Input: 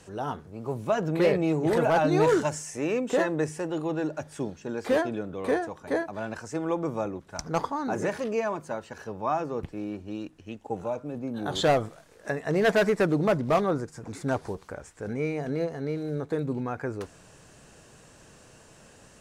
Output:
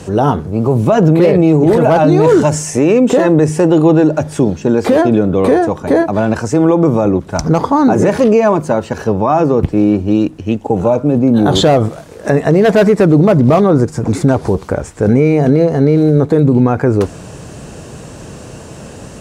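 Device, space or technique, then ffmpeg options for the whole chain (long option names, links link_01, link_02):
mastering chain: -af "highpass=42,equalizer=frequency=1700:width_type=o:width=0.48:gain=-3,acompressor=threshold=-28dB:ratio=2,tiltshelf=frequency=670:gain=4.5,alimiter=level_in=22dB:limit=-1dB:release=50:level=0:latency=1,volume=-1dB"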